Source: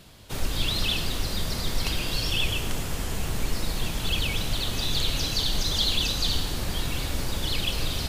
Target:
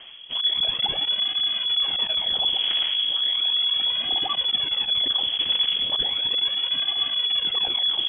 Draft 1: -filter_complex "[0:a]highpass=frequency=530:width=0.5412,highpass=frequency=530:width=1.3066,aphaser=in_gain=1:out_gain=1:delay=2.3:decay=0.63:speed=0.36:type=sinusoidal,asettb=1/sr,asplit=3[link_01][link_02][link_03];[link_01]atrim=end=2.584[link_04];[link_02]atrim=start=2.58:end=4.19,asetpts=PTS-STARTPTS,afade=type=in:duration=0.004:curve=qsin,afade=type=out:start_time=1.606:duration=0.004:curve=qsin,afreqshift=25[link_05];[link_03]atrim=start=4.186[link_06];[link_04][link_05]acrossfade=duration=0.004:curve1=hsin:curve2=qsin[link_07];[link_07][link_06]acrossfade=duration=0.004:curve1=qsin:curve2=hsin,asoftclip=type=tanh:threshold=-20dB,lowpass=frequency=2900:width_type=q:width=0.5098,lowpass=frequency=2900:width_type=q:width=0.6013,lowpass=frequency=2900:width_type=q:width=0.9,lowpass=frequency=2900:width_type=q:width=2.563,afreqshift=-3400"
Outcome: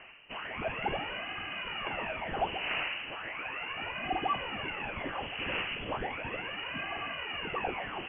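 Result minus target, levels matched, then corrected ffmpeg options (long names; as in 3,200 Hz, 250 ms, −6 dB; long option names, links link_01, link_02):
500 Hz band +18.0 dB
-filter_complex "[0:a]aphaser=in_gain=1:out_gain=1:delay=2.3:decay=0.63:speed=0.36:type=sinusoidal,asettb=1/sr,asplit=3[link_01][link_02][link_03];[link_01]atrim=end=2.584[link_04];[link_02]atrim=start=2.58:end=4.19,asetpts=PTS-STARTPTS,afade=type=in:duration=0.004:curve=qsin,afade=type=out:start_time=1.606:duration=0.004:curve=qsin,afreqshift=25[link_05];[link_03]atrim=start=4.186[link_06];[link_04][link_05]acrossfade=duration=0.004:curve1=hsin:curve2=qsin[link_07];[link_07][link_06]acrossfade=duration=0.004:curve1=qsin:curve2=hsin,asoftclip=type=tanh:threshold=-20dB,lowpass=frequency=2900:width_type=q:width=0.5098,lowpass=frequency=2900:width_type=q:width=0.6013,lowpass=frequency=2900:width_type=q:width=0.9,lowpass=frequency=2900:width_type=q:width=2.563,afreqshift=-3400"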